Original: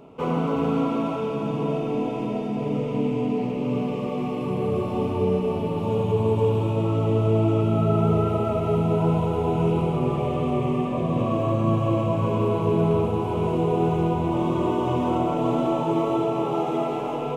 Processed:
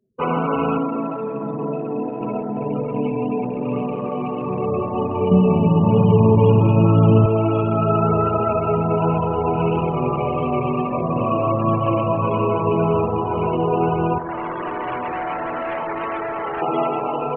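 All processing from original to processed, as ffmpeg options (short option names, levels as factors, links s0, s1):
-filter_complex "[0:a]asettb=1/sr,asplit=3[s0][s1][s2];[s0]atrim=end=0.784[s3];[s1]atrim=start=0.78:end=2.21,asetpts=PTS-STARTPTS,afade=t=in:d=0.004:c=qsin,afade=t=out:st=1.426:d=0.004:c=qsin,highpass=140,acrossover=split=480|3000[s4][s5][s6];[s5]acompressor=threshold=0.00708:ratio=1.5:attack=3.2:release=140:knee=2.83:detection=peak[s7];[s4][s7][s6]amix=inputs=3:normalize=0[s8];[s2]atrim=start=2.206[s9];[s3][s8]acrossfade=d=0.004:c1=hsin:c2=qsin[s10];[s10][s9]acrossfade=d=0.004:c1=qsin:c2=hsin,asettb=1/sr,asplit=3[s11][s12][s13];[s11]atrim=end=5.314[s14];[s12]atrim=start=5.31:end=7.26,asetpts=PTS-STARTPTS,afade=t=in:d=0.004:c=qsin,afade=t=out:st=1.946:d=0.004:c=qsin,equalizer=f=160:t=o:w=1.5:g=14.5,bandreject=f=50:t=h:w=6,bandreject=f=100:t=h:w=6,bandreject=f=150:t=h:w=6,bandreject=f=200:t=h:w=6,bandreject=f=250:t=h:w=6,bandreject=f=300:t=h:w=6,bandreject=f=350:t=h:w=6,bandreject=f=400:t=h:w=6,bandreject=f=450:t=h:w=6[s15];[s13]atrim=start=7.256[s16];[s14][s15]acrossfade=d=0.004:c1=hsin:c2=qsin[s17];[s17][s16]acrossfade=d=0.004:c1=qsin:c2=hsin,asettb=1/sr,asplit=3[s18][s19][s20];[s18]atrim=end=14.184[s21];[s19]atrim=start=14.18:end=16.62,asetpts=PTS-STARTPTS,afade=t=in:d=0.004:c=qsin,afade=t=out:st=2.436:d=0.004:c=qsin,highpass=f=390:p=1,asplit=2[s22][s23];[s23]adelay=26,volume=0.398[s24];[s22][s24]amix=inputs=2:normalize=0,atrim=end_sample=107604,volume=25.1,asoftclip=hard,volume=0.0398[s25];[s20]atrim=start=16.616[s26];[s21][s25]acrossfade=d=0.004:c1=hsin:c2=qsin[s27];[s27][s26]acrossfade=d=0.004:c1=qsin:c2=hsin,afftfilt=real='re*gte(hypot(re,im),0.0178)':imag='im*gte(hypot(re,im),0.0178)':win_size=1024:overlap=0.75,anlmdn=25.1,equalizer=f=2400:w=0.38:g=13"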